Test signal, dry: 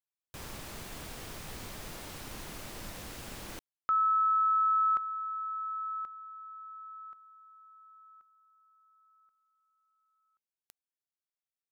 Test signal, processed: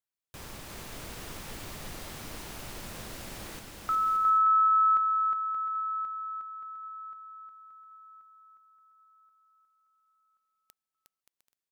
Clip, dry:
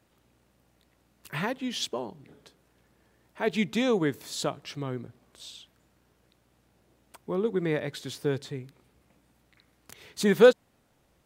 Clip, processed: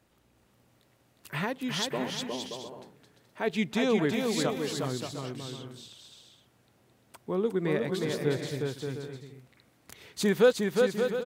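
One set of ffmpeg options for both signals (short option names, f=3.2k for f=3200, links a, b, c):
-filter_complex "[0:a]asplit=2[a][b];[b]alimiter=limit=-18dB:level=0:latency=1:release=321,volume=3dB[c];[a][c]amix=inputs=2:normalize=0,aecho=1:1:360|576|705.6|783.4|830:0.631|0.398|0.251|0.158|0.1,volume=-8dB"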